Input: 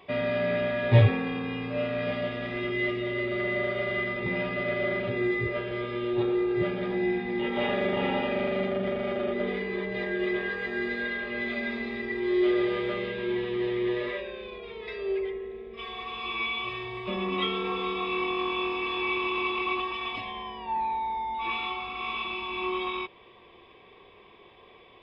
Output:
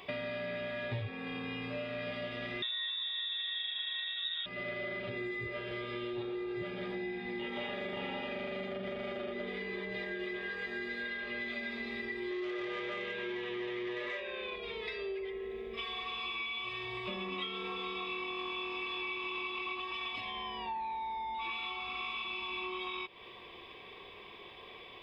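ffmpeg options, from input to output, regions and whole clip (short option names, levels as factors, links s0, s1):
-filter_complex "[0:a]asettb=1/sr,asplit=3[s0][s1][s2];[s0]atrim=end=2.624[s3];[s1]atrim=start=2.62:end=4.46,asetpts=PTS-STARTPTS,afade=t=in:d=0.004:c=qsin,afade=t=out:st=1.836:d=0.004:c=qsin,lowshelf=f=320:g=8.5,lowpass=f=3300:t=q:w=0.5098,lowpass=f=3300:t=q:w=0.6013,lowpass=f=3300:t=q:w=0.9,lowpass=f=3300:t=q:w=2.563,afreqshift=-3900[s4];[s2]atrim=start=4.456[s5];[s3][s4]acrossfade=d=0.004:c1=hsin:c2=qsin[s6];[s6][s5]acrossfade=d=0.004:c1=qsin:c2=hsin,asettb=1/sr,asplit=3[s7][s8][s9];[s7]atrim=end=12.314[s10];[s8]atrim=start=12.31:end=14.56,asetpts=PTS-STARTPTS,afade=t=in:d=0.004:c=qsin,afade=t=out:st=2.246:d=0.004:c=qsin,lowpass=3900,asplit=2[s11][s12];[s12]highpass=f=720:p=1,volume=3.98,asoftclip=type=tanh:threshold=0.158[s13];[s11][s13]amix=inputs=2:normalize=0,lowpass=f=2800:p=1,volume=0.501[s14];[s9]atrim=start=14.556[s15];[s10][s14]acrossfade=d=0.004:c1=hsin:c2=qsin[s16];[s16][s15]acrossfade=d=0.004:c1=qsin:c2=hsin,highshelf=f=2200:g=10,acompressor=threshold=0.0141:ratio=6"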